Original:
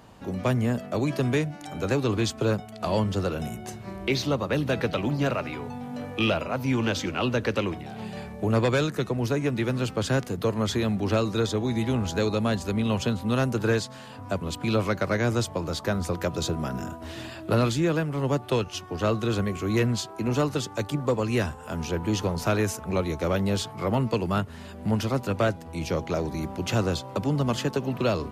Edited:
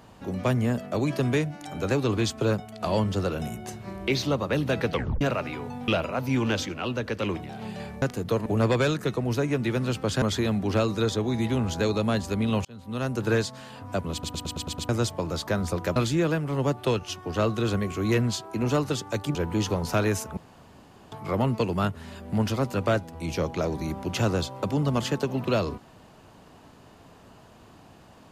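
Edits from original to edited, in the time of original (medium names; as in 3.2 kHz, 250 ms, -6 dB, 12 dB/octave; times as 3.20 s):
4.92 s: tape stop 0.29 s
5.88–6.25 s: delete
7.03–7.60 s: gain -4 dB
10.15–10.59 s: move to 8.39 s
13.02–13.68 s: fade in
14.49 s: stutter in place 0.11 s, 7 plays
16.33–17.61 s: delete
21.00–21.88 s: delete
22.90–23.65 s: room tone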